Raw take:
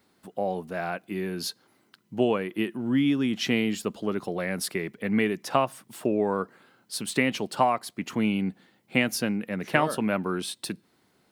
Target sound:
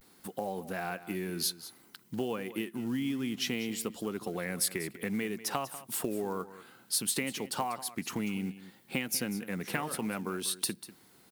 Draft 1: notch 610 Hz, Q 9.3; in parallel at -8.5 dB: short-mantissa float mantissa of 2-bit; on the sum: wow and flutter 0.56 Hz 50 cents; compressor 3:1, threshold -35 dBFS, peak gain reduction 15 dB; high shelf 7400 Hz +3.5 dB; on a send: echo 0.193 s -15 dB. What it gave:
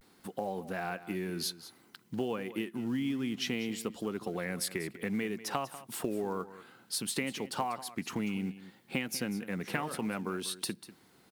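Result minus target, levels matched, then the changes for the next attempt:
8000 Hz band -4.0 dB
change: high shelf 7400 Hz +13 dB

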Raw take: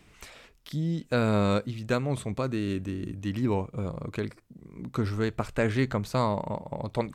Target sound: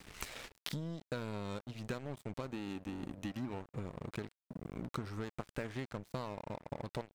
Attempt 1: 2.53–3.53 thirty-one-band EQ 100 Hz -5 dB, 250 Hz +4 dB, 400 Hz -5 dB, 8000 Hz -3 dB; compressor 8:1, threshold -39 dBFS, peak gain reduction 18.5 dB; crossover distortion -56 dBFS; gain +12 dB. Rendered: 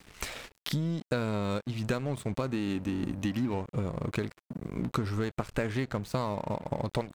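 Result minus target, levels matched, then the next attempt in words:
compressor: peak gain reduction -8.5 dB
2.53–3.53 thirty-one-band EQ 100 Hz -5 dB, 250 Hz +4 dB, 400 Hz -5 dB, 8000 Hz -3 dB; compressor 8:1, threshold -48.5 dBFS, peak gain reduction 26.5 dB; crossover distortion -56 dBFS; gain +12 dB

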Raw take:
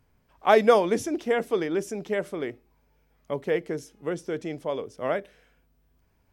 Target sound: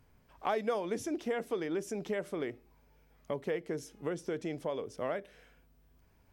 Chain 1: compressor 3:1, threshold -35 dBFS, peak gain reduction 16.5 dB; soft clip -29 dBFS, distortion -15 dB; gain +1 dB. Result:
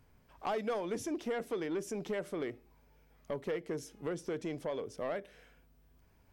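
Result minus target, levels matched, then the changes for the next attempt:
soft clip: distortion +16 dB
change: soft clip -18 dBFS, distortion -32 dB

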